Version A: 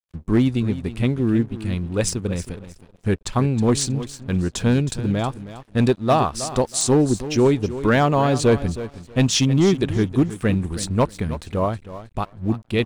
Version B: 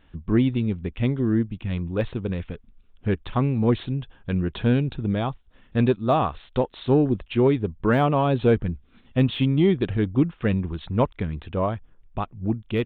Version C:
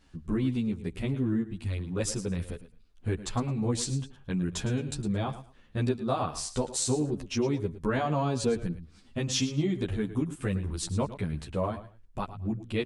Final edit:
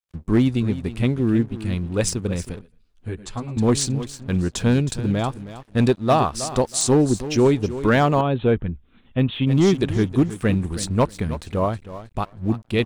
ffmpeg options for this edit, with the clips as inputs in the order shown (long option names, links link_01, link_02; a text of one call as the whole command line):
ffmpeg -i take0.wav -i take1.wav -i take2.wav -filter_complex "[0:a]asplit=3[link_01][link_02][link_03];[link_01]atrim=end=2.612[link_04];[2:a]atrim=start=2.608:end=3.572[link_05];[link_02]atrim=start=3.568:end=8.212[link_06];[1:a]atrim=start=8.208:end=9.472[link_07];[link_03]atrim=start=9.468[link_08];[link_04][link_05]acrossfade=duration=0.004:curve1=hsin:curve2=hsin[link_09];[link_09][link_06]acrossfade=duration=0.004:curve1=hsin:curve2=hsin[link_10];[link_10][link_07]acrossfade=duration=0.004:curve1=hsin:curve2=hsin[link_11];[link_11][link_08]acrossfade=duration=0.004:curve1=hsin:curve2=hsin" out.wav